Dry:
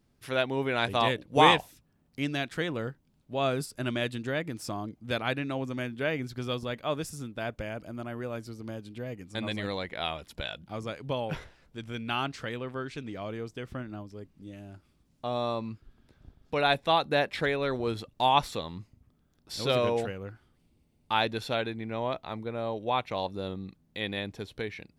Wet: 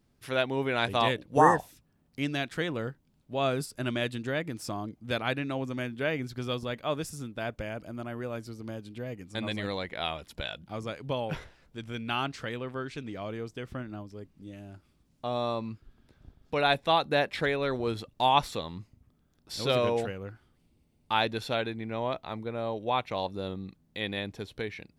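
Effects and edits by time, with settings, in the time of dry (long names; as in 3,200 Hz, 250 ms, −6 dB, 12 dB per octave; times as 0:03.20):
0:01.40–0:01.60: healed spectral selection 1,900–5,100 Hz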